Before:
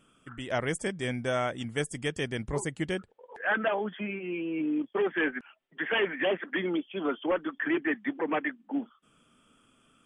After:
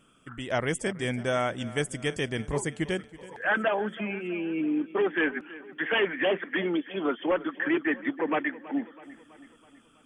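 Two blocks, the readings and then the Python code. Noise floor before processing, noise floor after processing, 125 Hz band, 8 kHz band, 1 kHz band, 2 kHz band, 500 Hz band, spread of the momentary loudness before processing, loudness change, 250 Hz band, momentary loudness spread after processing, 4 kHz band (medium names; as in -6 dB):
-67 dBFS, -60 dBFS, +2.0 dB, +2.0 dB, +2.0 dB, +2.0 dB, +2.0 dB, 7 LU, +2.0 dB, +2.0 dB, 8 LU, +2.0 dB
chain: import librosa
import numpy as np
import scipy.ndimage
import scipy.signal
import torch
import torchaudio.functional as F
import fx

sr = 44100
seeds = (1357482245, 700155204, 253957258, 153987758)

y = fx.echo_feedback(x, sr, ms=326, feedback_pct=55, wet_db=-18.0)
y = y * 10.0 ** (2.0 / 20.0)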